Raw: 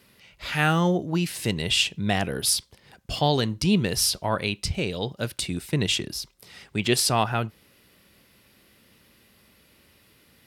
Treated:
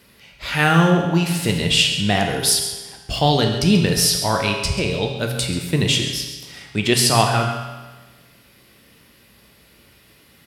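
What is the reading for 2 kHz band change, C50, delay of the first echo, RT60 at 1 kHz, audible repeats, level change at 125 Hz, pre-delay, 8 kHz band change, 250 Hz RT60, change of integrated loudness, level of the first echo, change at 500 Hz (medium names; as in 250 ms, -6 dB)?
+6.5 dB, 4.5 dB, 136 ms, 1.3 s, 1, +7.0 dB, 7 ms, +6.5 dB, 1.3 s, +6.5 dB, -12.5 dB, +6.5 dB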